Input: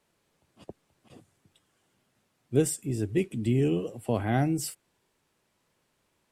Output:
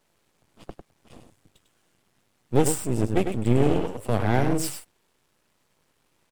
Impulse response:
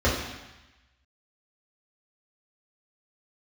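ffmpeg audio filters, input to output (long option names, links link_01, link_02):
-af "aecho=1:1:100:0.447,aeval=exprs='max(val(0),0)':channel_layout=same,volume=7.5dB"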